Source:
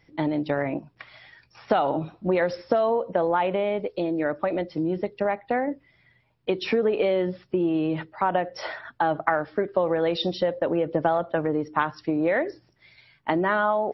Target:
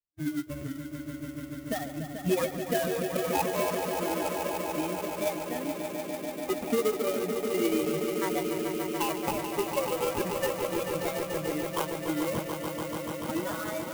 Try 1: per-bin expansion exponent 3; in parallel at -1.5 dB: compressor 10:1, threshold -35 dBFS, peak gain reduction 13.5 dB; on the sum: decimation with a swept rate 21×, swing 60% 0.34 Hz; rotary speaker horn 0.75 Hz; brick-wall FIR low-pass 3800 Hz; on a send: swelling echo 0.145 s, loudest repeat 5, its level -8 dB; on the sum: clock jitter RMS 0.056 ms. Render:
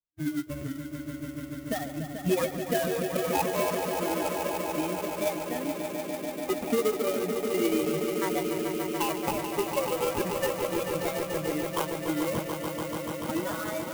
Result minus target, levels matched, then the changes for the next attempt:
compressor: peak gain reduction -5.5 dB
change: compressor 10:1, threshold -41 dBFS, peak gain reduction 18.5 dB

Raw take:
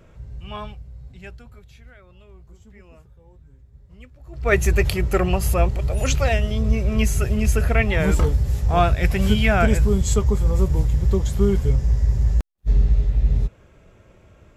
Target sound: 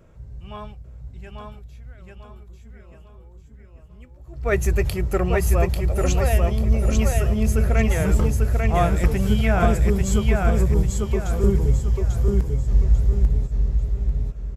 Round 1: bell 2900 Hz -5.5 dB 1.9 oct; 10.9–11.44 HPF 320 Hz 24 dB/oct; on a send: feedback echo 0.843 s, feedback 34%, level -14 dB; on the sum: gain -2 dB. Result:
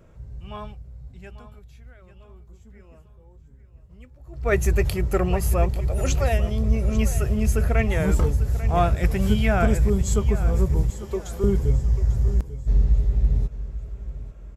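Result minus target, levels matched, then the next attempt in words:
echo-to-direct -11 dB
bell 2900 Hz -5.5 dB 1.9 oct; 10.9–11.44 HPF 320 Hz 24 dB/oct; on a send: feedback echo 0.843 s, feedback 34%, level -3 dB; on the sum: gain -2 dB

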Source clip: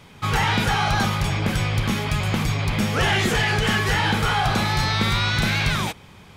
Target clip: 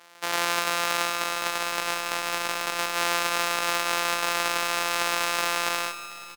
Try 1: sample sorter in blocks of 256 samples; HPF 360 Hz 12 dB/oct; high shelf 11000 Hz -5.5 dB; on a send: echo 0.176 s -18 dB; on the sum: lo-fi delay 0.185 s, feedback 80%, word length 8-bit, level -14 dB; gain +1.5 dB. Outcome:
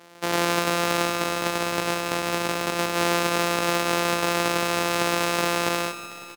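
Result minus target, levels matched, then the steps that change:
500 Hz band +5.5 dB
change: HPF 840 Hz 12 dB/oct

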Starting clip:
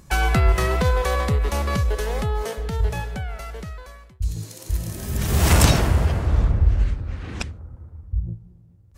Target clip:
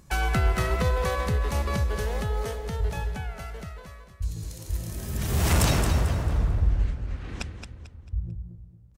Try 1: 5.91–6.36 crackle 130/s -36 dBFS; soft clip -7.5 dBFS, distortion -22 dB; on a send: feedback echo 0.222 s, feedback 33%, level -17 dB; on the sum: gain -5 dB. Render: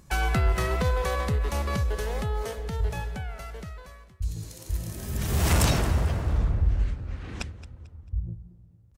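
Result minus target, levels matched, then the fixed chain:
echo-to-direct -9 dB
5.91–6.36 crackle 130/s -36 dBFS; soft clip -7.5 dBFS, distortion -22 dB; on a send: feedback echo 0.222 s, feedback 33%, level -8 dB; on the sum: gain -5 dB

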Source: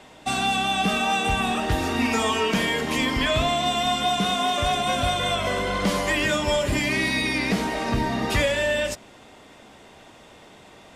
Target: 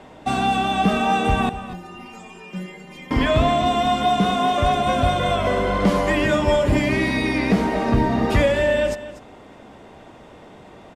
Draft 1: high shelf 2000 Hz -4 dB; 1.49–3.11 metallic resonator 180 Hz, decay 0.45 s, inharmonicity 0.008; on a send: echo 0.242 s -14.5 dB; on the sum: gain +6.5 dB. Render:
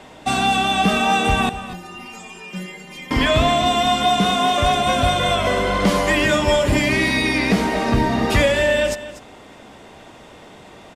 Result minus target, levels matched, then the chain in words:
4000 Hz band +5.0 dB
high shelf 2000 Hz -13.5 dB; 1.49–3.11 metallic resonator 180 Hz, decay 0.45 s, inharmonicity 0.008; on a send: echo 0.242 s -14.5 dB; on the sum: gain +6.5 dB

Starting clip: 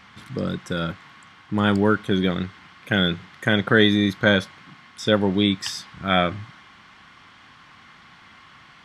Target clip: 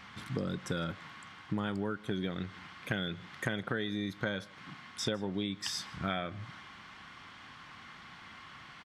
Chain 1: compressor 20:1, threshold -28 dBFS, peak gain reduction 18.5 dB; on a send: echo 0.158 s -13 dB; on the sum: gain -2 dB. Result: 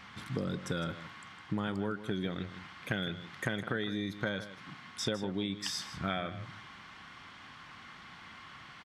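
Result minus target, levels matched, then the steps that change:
echo-to-direct +10.5 dB
change: echo 0.158 s -23.5 dB

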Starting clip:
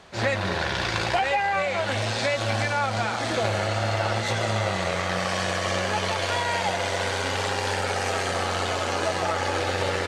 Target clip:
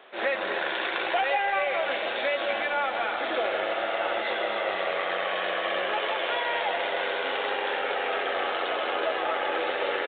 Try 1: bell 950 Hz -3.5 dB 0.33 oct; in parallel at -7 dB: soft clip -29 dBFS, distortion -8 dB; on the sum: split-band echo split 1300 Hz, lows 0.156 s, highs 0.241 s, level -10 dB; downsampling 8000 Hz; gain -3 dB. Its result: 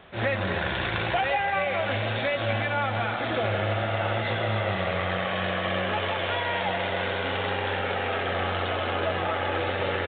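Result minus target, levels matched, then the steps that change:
250 Hz band +6.5 dB
add first: HPF 330 Hz 24 dB/oct

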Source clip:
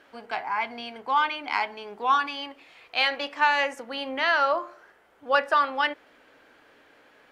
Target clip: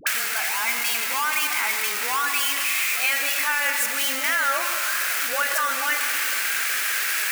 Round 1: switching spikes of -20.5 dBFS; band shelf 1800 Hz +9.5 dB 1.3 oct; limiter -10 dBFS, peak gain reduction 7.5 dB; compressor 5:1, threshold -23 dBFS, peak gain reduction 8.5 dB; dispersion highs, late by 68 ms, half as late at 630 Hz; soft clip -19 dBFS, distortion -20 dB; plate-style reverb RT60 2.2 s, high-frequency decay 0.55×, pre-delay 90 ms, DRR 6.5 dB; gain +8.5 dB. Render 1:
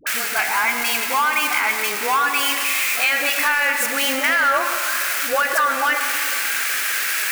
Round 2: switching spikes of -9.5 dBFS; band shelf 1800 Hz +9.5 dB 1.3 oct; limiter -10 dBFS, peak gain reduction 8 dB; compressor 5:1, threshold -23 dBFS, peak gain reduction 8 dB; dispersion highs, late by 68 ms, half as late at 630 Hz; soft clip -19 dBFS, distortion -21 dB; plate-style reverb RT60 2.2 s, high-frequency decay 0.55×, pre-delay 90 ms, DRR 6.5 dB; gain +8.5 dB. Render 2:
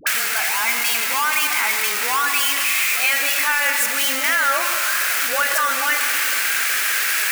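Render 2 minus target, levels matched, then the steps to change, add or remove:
compressor: peak gain reduction -5 dB
change: compressor 5:1, threshold -29 dBFS, peak gain reduction 13 dB

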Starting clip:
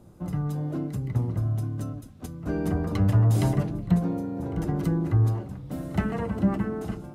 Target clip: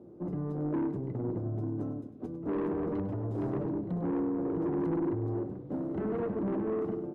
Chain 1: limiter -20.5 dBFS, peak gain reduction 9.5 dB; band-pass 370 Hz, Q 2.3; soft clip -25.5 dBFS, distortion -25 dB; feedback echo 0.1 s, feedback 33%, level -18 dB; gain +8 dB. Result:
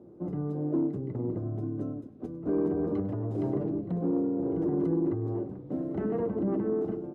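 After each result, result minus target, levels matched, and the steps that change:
soft clip: distortion -13 dB; echo-to-direct -6 dB
change: soft clip -35.5 dBFS, distortion -12 dB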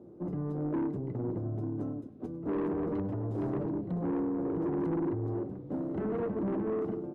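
echo-to-direct -6 dB
change: feedback echo 0.1 s, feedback 33%, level -12 dB

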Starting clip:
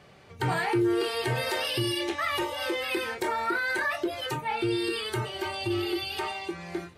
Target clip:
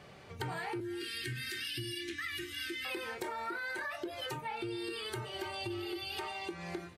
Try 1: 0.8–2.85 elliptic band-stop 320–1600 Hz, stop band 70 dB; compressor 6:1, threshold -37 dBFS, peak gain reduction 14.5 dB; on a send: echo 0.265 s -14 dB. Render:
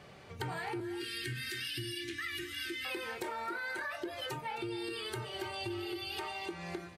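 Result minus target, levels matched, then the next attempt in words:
echo-to-direct +11 dB
0.8–2.85 elliptic band-stop 320–1600 Hz, stop band 70 dB; compressor 6:1, threshold -37 dBFS, peak gain reduction 14.5 dB; on a send: echo 0.265 s -25 dB

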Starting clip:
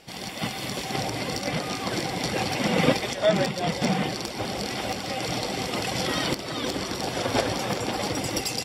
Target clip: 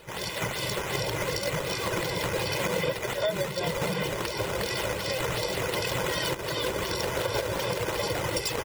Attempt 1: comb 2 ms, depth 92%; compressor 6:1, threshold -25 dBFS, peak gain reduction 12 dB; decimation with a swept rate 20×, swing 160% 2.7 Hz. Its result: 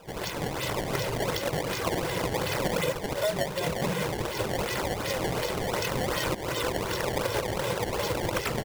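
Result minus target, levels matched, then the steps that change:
decimation with a swept rate: distortion +7 dB
change: decimation with a swept rate 6×, swing 160% 2.7 Hz

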